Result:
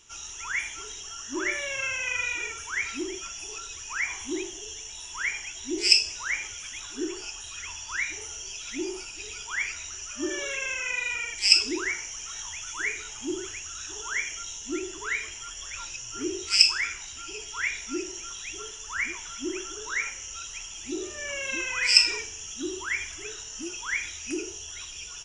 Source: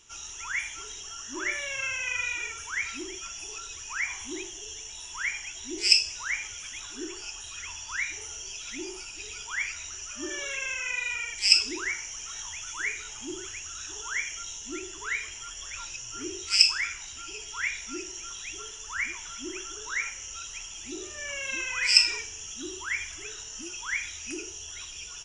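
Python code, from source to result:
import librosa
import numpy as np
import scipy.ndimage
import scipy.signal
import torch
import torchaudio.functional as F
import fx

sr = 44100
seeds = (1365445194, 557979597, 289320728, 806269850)

y = fx.dynamic_eq(x, sr, hz=360.0, q=0.74, threshold_db=-51.0, ratio=4.0, max_db=6)
y = F.gain(torch.from_numpy(y), 1.0).numpy()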